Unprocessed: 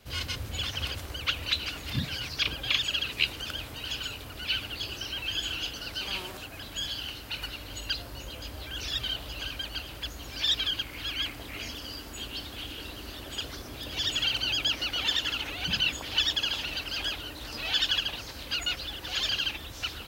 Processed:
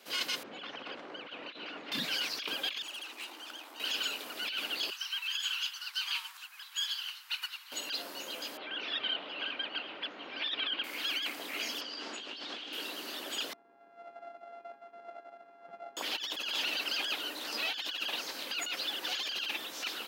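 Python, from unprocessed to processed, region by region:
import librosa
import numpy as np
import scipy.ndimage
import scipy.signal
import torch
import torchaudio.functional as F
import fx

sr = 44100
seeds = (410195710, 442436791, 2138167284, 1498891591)

y = fx.chain(x, sr, fx.over_compress(threshold_db=-34.0, ratio=-1.0),
    fx.spacing_loss(db_at_10k=40), at=(0.43, 1.92))
y = fx.chain(y, sr, fx.tube_stage(drive_db=33.0, bias=0.5),
    fx.cheby_ripple_highpass(hz=230.0, ripple_db=9), at=(2.82, 3.8))
y = fx.chain(y, sr, fx.steep_highpass(hz=930.0, slope=48),
    fx.upward_expand(threshold_db=-47.0, expansion=1.5), at=(4.9, 7.72))
y = fx.chain(y, sr, fx.lowpass(hz=3100.0, slope=24),
    fx.notch(hz=1700.0, q=27.0), at=(8.57, 10.84))
y = fx.chain(y, sr, fx.lowpass(hz=5800.0, slope=24),
    fx.peak_eq(hz=130.0, db=-8.0, octaves=0.34),
    fx.over_compress(threshold_db=-43.0, ratio=-1.0), at=(11.81, 12.73))
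y = fx.chain(y, sr, fx.sample_sort(block=64),
    fx.lowpass(hz=1200.0, slope=12),
    fx.comb_fb(f0_hz=820.0, decay_s=0.32, harmonics='all', damping=0.0, mix_pct=90), at=(13.53, 15.97))
y = scipy.signal.sosfilt(scipy.signal.bessel(8, 350.0, 'highpass', norm='mag', fs=sr, output='sos'), y)
y = fx.over_compress(y, sr, threshold_db=-34.0, ratio=-1.0)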